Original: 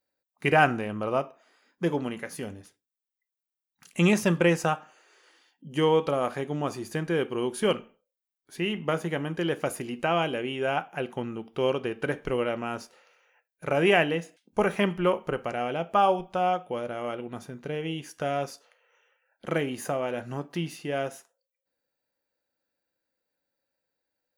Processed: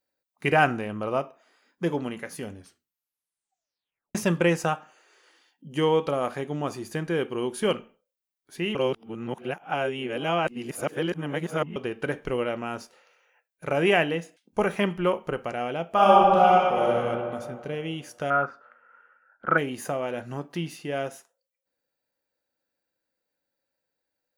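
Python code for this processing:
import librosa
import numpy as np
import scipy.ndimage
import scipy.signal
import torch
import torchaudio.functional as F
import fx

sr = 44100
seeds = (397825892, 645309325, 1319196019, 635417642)

y = fx.reverb_throw(x, sr, start_s=15.89, length_s=1.06, rt60_s=2.1, drr_db=-6.5)
y = fx.lowpass_res(y, sr, hz=1400.0, q=9.4, at=(18.3, 19.58))
y = fx.edit(y, sr, fx.tape_stop(start_s=2.53, length_s=1.62),
    fx.reverse_span(start_s=8.75, length_s=3.01), tone=tone)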